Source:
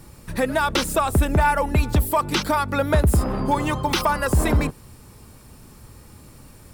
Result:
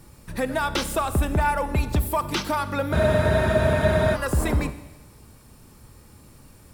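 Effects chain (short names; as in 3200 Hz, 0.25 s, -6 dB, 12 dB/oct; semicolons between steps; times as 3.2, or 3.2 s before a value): Schroeder reverb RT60 1.1 s, combs from 31 ms, DRR 12 dB; spectral freeze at 2.96, 1.19 s; gain -4 dB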